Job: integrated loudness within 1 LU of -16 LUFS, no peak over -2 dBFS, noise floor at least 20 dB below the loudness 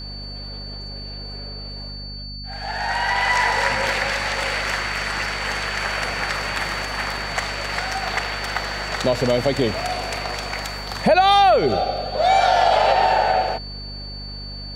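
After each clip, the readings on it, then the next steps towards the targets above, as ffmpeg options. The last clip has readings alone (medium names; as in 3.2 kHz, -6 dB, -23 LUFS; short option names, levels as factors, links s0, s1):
hum 50 Hz; highest harmonic 250 Hz; hum level -33 dBFS; steady tone 4.5 kHz; tone level -34 dBFS; loudness -20.5 LUFS; peak level -5.0 dBFS; loudness target -16.0 LUFS
-> -af "bandreject=f=50:t=h:w=4,bandreject=f=100:t=h:w=4,bandreject=f=150:t=h:w=4,bandreject=f=200:t=h:w=4,bandreject=f=250:t=h:w=4"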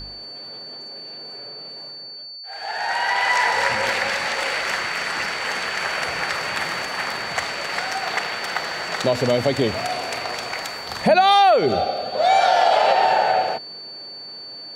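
hum not found; steady tone 4.5 kHz; tone level -34 dBFS
-> -af "bandreject=f=4500:w=30"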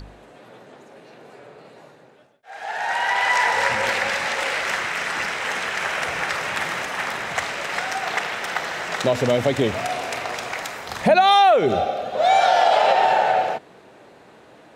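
steady tone not found; loudness -20.5 LUFS; peak level -5.0 dBFS; loudness target -16.0 LUFS
-> -af "volume=1.68,alimiter=limit=0.794:level=0:latency=1"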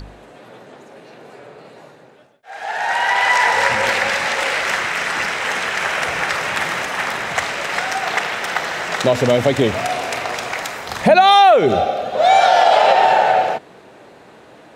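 loudness -16.5 LUFS; peak level -2.0 dBFS; noise floor -45 dBFS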